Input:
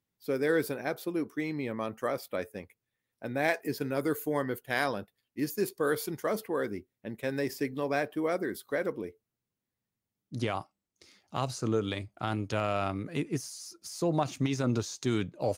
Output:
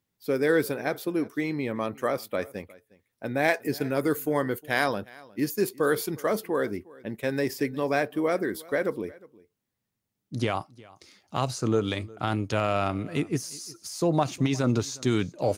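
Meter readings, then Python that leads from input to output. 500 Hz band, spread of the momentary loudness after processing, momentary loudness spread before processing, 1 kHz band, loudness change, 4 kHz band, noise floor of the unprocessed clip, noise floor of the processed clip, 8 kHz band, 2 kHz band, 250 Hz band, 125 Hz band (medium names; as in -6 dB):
+4.5 dB, 9 LU, 9 LU, +4.5 dB, +4.5 dB, +4.5 dB, under -85 dBFS, -82 dBFS, +4.5 dB, +4.5 dB, +4.5 dB, +4.5 dB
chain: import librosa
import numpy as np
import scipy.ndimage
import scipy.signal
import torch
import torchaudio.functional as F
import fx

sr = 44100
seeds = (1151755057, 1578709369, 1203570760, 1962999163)

y = x + 10.0 ** (-22.5 / 20.0) * np.pad(x, (int(359 * sr / 1000.0), 0))[:len(x)]
y = F.gain(torch.from_numpy(y), 4.5).numpy()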